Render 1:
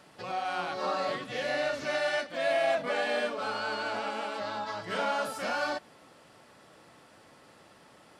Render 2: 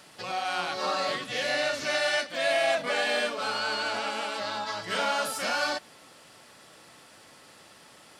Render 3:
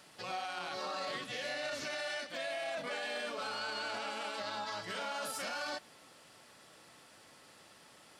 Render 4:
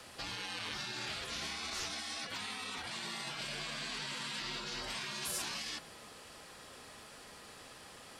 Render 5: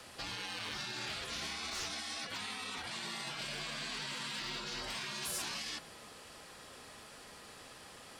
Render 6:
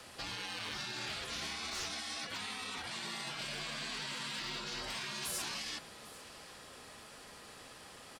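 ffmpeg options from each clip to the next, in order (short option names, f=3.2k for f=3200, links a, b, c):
-af "highshelf=f=2.1k:g=10.5"
-af "alimiter=level_in=0.5dB:limit=-24dB:level=0:latency=1:release=24,volume=-0.5dB,volume=-6dB"
-af "bandreject=f=60:t=h:w=6,bandreject=f=120:t=h:w=6,bandreject=f=180:t=h:w=6,bandreject=f=240:t=h:w=6,afreqshift=-69,afftfilt=real='re*lt(hypot(re,im),0.0178)':imag='im*lt(hypot(re,im),0.0178)':win_size=1024:overlap=0.75,volume=6dB"
-af "asoftclip=type=hard:threshold=-32.5dB"
-af "aecho=1:1:798:0.112"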